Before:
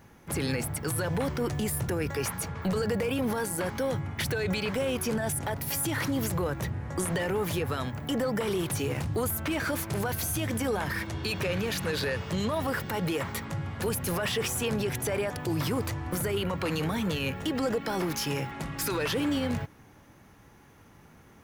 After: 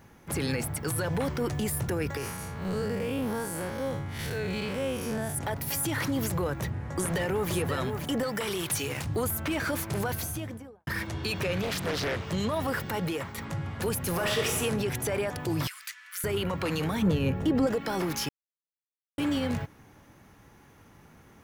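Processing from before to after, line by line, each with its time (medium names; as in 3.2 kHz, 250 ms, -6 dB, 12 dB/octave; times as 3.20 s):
2.17–5.35 s: spectral blur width 126 ms
6.50–7.52 s: echo throw 530 ms, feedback 15%, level -6.5 dB
8.23–9.06 s: tilt shelf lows -5 dB, about 1.1 kHz
10.06–10.87 s: studio fade out
11.62–12.27 s: loudspeaker Doppler distortion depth 0.72 ms
12.95–13.38 s: fade out, to -6 dB
14.12–14.59 s: reverb throw, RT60 1.1 s, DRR 1.5 dB
15.67–16.24 s: steep high-pass 1.5 kHz
17.02–17.67 s: tilt shelf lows +7 dB, about 910 Hz
18.29–19.18 s: mute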